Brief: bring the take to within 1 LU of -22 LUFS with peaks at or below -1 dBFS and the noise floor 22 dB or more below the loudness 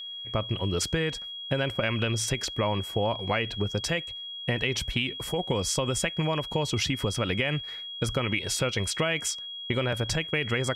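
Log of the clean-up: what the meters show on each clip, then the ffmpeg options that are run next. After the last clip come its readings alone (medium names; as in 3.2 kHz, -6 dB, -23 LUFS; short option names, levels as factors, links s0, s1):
steady tone 3.3 kHz; tone level -36 dBFS; loudness -28.5 LUFS; peak level -11.5 dBFS; loudness target -22.0 LUFS
-> -af "bandreject=f=3300:w=30"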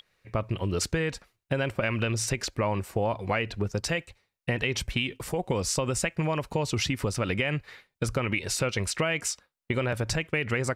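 steady tone not found; loudness -29.0 LUFS; peak level -12.5 dBFS; loudness target -22.0 LUFS
-> -af "volume=2.24"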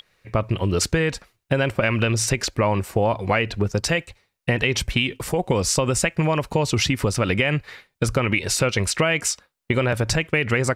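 loudness -22.0 LUFS; peak level -5.5 dBFS; noise floor -73 dBFS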